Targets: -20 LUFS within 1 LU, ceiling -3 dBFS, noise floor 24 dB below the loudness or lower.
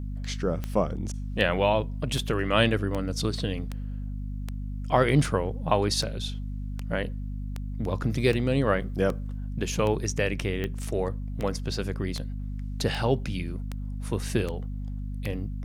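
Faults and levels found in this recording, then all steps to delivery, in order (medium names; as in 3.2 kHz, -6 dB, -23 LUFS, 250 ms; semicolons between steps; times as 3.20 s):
clicks found 20; hum 50 Hz; highest harmonic 250 Hz; hum level -30 dBFS; loudness -28.5 LUFS; peak level -6.5 dBFS; loudness target -20.0 LUFS
-> de-click; de-hum 50 Hz, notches 5; trim +8.5 dB; peak limiter -3 dBFS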